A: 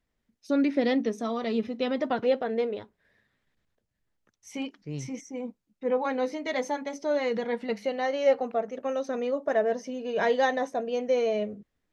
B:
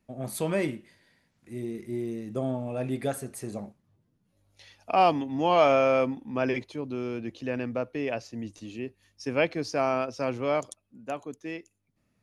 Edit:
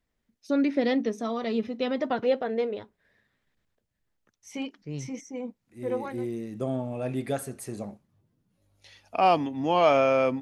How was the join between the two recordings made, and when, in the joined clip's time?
A
5.88 switch to B from 1.63 s, crossfade 0.82 s equal-power

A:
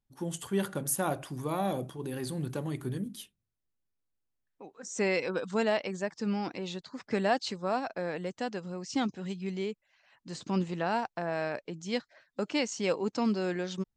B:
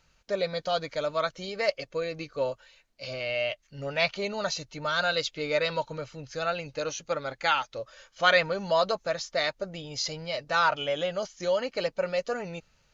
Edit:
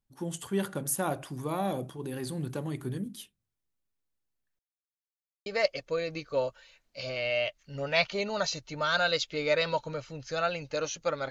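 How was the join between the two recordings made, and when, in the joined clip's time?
A
4.59–5.46 mute
5.46 switch to B from 1.5 s

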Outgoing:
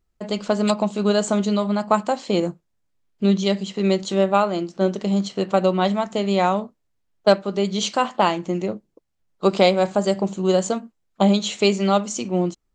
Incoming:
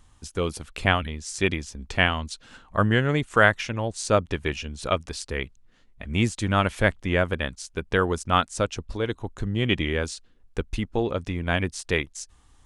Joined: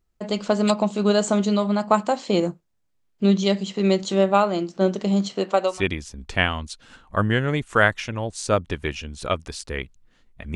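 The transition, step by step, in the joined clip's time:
outgoing
5.35–5.83 HPF 180 Hz -> 960 Hz
5.75 switch to incoming from 1.36 s, crossfade 0.16 s

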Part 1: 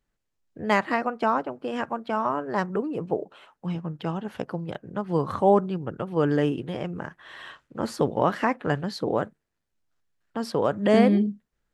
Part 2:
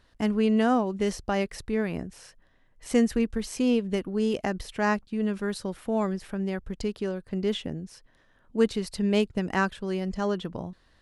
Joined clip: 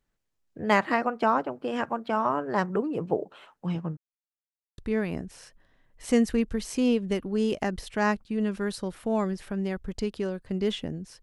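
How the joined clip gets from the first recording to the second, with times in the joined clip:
part 1
3.97–4.78 mute
4.78 switch to part 2 from 1.6 s

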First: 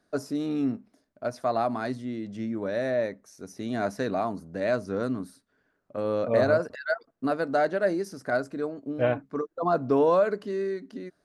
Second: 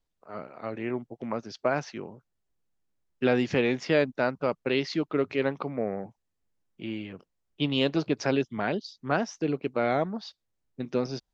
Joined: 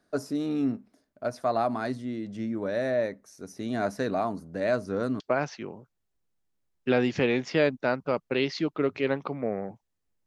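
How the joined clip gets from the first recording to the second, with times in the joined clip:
first
5.2 switch to second from 1.55 s

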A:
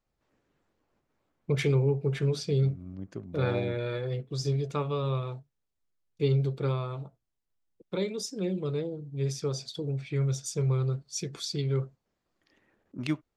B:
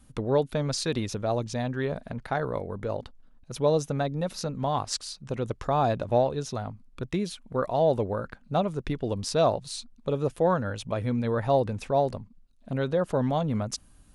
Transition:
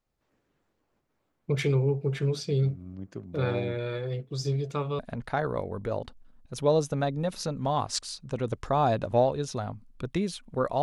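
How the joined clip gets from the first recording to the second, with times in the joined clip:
A
4.99 switch to B from 1.97 s

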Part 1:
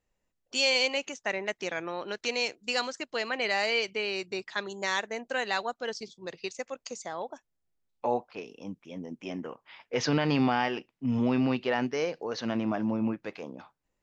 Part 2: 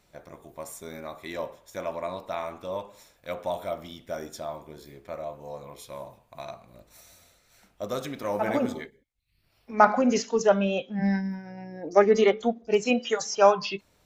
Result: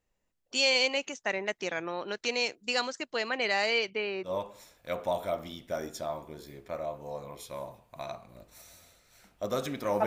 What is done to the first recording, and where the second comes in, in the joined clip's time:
part 1
3.78–4.31 LPF 6000 Hz -> 1200 Hz
4.27 switch to part 2 from 2.66 s, crossfade 0.08 s

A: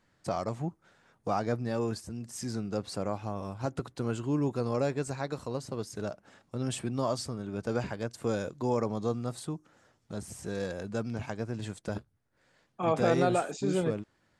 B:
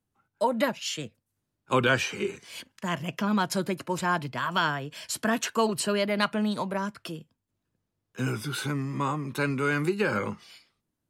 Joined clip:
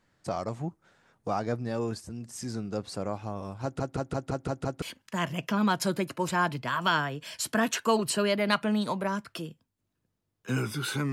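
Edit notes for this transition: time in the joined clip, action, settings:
A
3.63 stutter in place 0.17 s, 7 plays
4.82 switch to B from 2.52 s

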